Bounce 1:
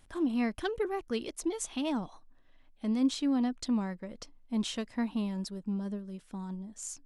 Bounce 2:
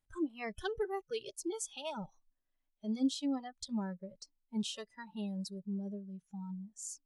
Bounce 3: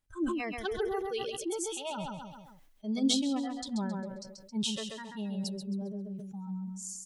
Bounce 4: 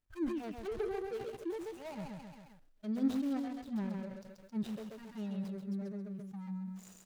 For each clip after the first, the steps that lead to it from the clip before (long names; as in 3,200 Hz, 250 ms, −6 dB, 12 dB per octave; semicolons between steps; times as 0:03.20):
noise reduction from a noise print of the clip's start 21 dB; level −3 dB
on a send: repeating echo 134 ms, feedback 32%, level −6 dB; on the sum: level that may fall only so fast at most 37 dB per second; level +2 dB
running median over 41 samples; one half of a high-frequency compander encoder only; level −3 dB